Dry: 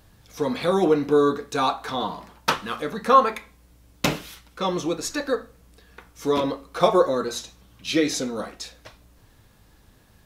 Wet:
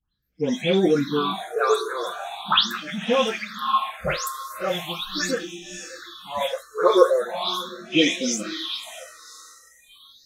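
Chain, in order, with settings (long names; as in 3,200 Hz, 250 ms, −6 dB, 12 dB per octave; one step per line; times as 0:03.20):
every frequency bin delayed by itself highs late, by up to 224 ms
parametric band 3,300 Hz +13 dB 0.44 octaves
feedback delay with all-pass diffusion 566 ms, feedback 43%, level −8.5 dB
all-pass phaser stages 6, 0.4 Hz, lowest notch 200–1,200 Hz
noise reduction from a noise print of the clip's start 27 dB
level +3.5 dB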